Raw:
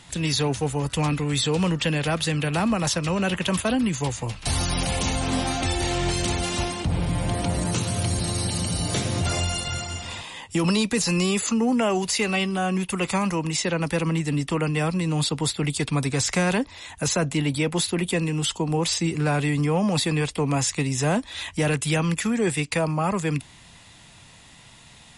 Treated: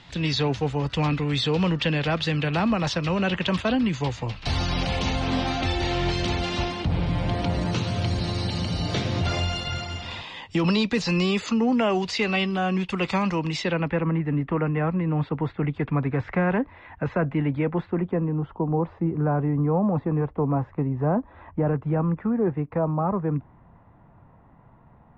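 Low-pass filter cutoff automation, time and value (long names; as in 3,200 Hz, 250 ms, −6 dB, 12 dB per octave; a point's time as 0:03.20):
low-pass filter 24 dB per octave
0:13.58 4,800 Hz
0:14.04 1,900 Hz
0:17.61 1,900 Hz
0:18.33 1,200 Hz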